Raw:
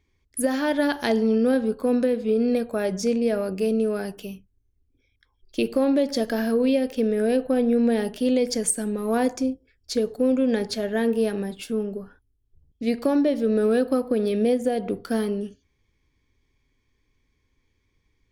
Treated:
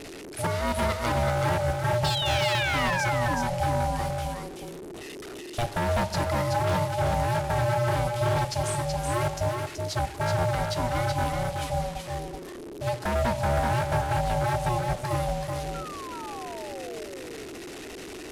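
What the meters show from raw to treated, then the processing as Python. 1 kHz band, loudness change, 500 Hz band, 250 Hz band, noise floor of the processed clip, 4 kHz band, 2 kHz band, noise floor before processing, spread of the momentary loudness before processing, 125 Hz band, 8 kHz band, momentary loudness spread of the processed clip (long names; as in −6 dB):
+8.5 dB, −4.0 dB, −5.5 dB, −12.0 dB, −40 dBFS, +4.0 dB, +4.0 dB, −71 dBFS, 8 LU, can't be measured, −3.0 dB, 14 LU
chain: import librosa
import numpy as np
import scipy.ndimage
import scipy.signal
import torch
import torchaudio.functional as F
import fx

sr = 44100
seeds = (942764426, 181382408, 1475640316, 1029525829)

p1 = fx.delta_mod(x, sr, bps=64000, step_db=-32.0)
p2 = fx.spec_paint(p1, sr, seeds[0], shape='fall', start_s=2.04, length_s=1.06, low_hz=1100.0, high_hz=4200.0, level_db=-26.0)
p3 = p2 * np.sin(2.0 * np.pi * 360.0 * np.arange(len(p2)) / sr)
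p4 = 10.0 ** (-19.0 / 20.0) * (np.abs((p3 / 10.0 ** (-19.0 / 20.0) + 3.0) % 4.0 - 2.0) - 1.0)
p5 = fx.spec_paint(p4, sr, seeds[1], shape='fall', start_s=15.74, length_s=1.32, low_hz=420.0, high_hz=1400.0, level_db=-40.0)
y = p5 + fx.echo_single(p5, sr, ms=377, db=-4.5, dry=0)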